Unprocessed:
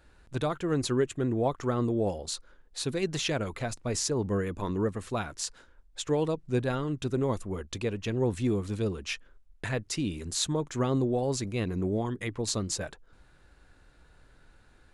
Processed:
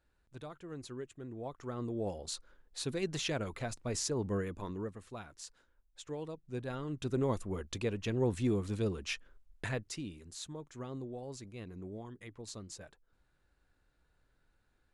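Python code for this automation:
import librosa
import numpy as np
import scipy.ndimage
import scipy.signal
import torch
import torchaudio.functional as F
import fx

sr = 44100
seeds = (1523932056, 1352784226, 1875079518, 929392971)

y = fx.gain(x, sr, db=fx.line((1.27, -17.0), (2.28, -5.5), (4.4, -5.5), (5.04, -14.0), (6.42, -14.0), (7.19, -3.5), (9.65, -3.5), (10.24, -15.5)))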